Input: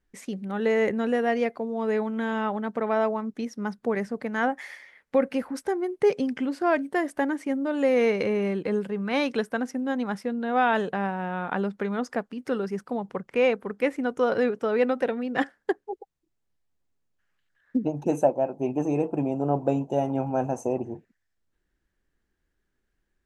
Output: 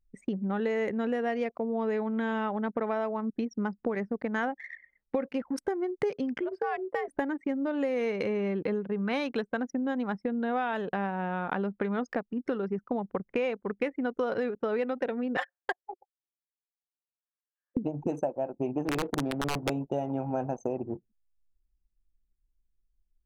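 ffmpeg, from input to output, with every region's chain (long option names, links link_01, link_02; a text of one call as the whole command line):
ffmpeg -i in.wav -filter_complex "[0:a]asettb=1/sr,asplit=3[link_01][link_02][link_03];[link_01]atrim=end=6.404[link_04];[link_02]atrim=start=6.4:end=7.08,asetpts=PTS-STARTPTS,afade=type=in:duration=0.004:curve=qsin,afade=type=out:start_time=0.676:duration=0.004:curve=qsin,acompressor=threshold=-29dB:ratio=2.5:attack=3.2:release=140:knee=1:detection=peak,bandreject=frequency=290:width=8.8,afreqshift=100[link_05];[link_03]atrim=start=7.076[link_06];[link_04][link_05]acrossfade=duration=0.004:curve1=hsin:curve2=qsin[link_07];[link_07][link_06]acrossfade=duration=0.004:curve1=qsin:curve2=hsin,asettb=1/sr,asplit=3[link_08][link_09][link_10];[link_08]atrim=end=15.374[link_11];[link_09]atrim=start=15.37:end=17.77,asetpts=PTS-STARTPTS,afade=type=in:duration=0.004:curve=qsin,afade=type=out:start_time=2.396:duration=0.004:curve=qsin,highpass=frequency=630:width=0.5412,highpass=frequency=630:width=1.3066,aecho=1:1:5.6:0.74,atrim=end_sample=105840[link_12];[link_10]atrim=start=17.766[link_13];[link_11][link_12]acrossfade=duration=0.004:curve1=hsin:curve2=qsin[link_14];[link_14][link_13]acrossfade=duration=0.004:curve1=qsin:curve2=hsin,asettb=1/sr,asplit=3[link_15][link_16][link_17];[link_15]atrim=end=18.854[link_18];[link_16]atrim=start=18.85:end=19.7,asetpts=PTS-STARTPTS,afade=type=in:duration=0.004:curve=qsin,afade=type=out:start_time=0.846:duration=0.004:curve=qsin,aeval=exprs='(mod(6.68*val(0)+1,2)-1)/6.68':channel_layout=same,adynamicsmooth=sensitivity=6:basefreq=660[link_19];[link_17]atrim=start=19.696[link_20];[link_18][link_19]acrossfade=duration=0.004:curve1=hsin:curve2=qsin[link_21];[link_21][link_20]acrossfade=duration=0.004:curve1=qsin:curve2=hsin,anlmdn=2.51,acompressor=threshold=-35dB:ratio=6,volume=7dB" out.wav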